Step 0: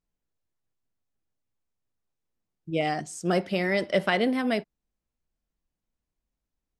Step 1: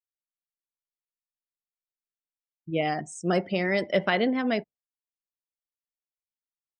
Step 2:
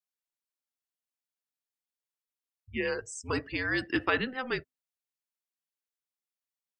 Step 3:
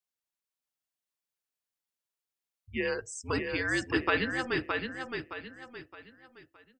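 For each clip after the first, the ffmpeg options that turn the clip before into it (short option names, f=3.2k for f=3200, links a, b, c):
-af "afftdn=nr=35:nf=-43"
-af "afreqshift=-260,highpass=f=500:p=1"
-af "aecho=1:1:617|1234|1851|2468:0.562|0.202|0.0729|0.0262"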